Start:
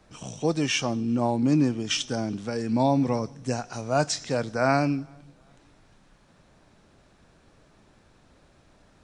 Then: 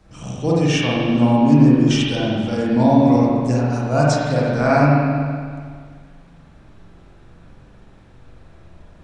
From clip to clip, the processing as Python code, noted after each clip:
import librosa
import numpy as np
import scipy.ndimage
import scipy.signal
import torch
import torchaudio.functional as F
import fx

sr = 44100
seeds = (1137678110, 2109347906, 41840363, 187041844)

y = fx.low_shelf(x, sr, hz=160.0, db=9.5)
y = fx.rev_spring(y, sr, rt60_s=1.9, pass_ms=(41, 47), chirp_ms=50, drr_db=-6.0)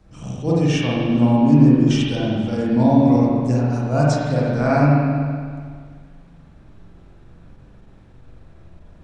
y = fx.low_shelf(x, sr, hz=460.0, db=5.5)
y = fx.attack_slew(y, sr, db_per_s=190.0)
y = F.gain(torch.from_numpy(y), -4.5).numpy()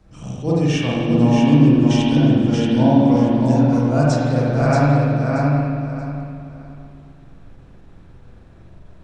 y = fx.echo_feedback(x, sr, ms=630, feedback_pct=24, wet_db=-4.0)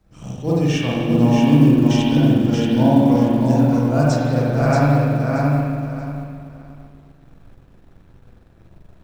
y = fx.law_mismatch(x, sr, coded='A')